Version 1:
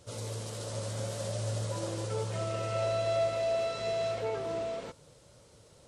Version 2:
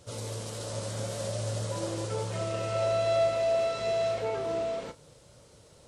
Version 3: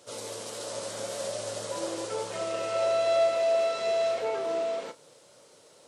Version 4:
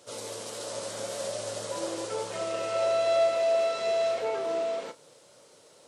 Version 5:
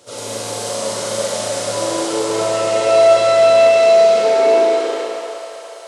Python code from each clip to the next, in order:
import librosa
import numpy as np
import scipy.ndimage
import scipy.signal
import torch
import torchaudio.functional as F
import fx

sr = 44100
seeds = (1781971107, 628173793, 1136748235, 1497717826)

y1 = fx.doubler(x, sr, ms=33.0, db=-12)
y1 = y1 * librosa.db_to_amplitude(2.0)
y2 = scipy.signal.sosfilt(scipy.signal.butter(2, 320.0, 'highpass', fs=sr, output='sos'), y1)
y2 = y2 * librosa.db_to_amplitude(2.0)
y3 = y2
y4 = fx.rev_schroeder(y3, sr, rt60_s=3.5, comb_ms=32, drr_db=-6.5)
y4 = fx.filter_sweep_highpass(y4, sr, from_hz=68.0, to_hz=620.0, start_s=3.12, end_s=5.49, q=1.4)
y4 = y4 * librosa.db_to_amplitude(7.0)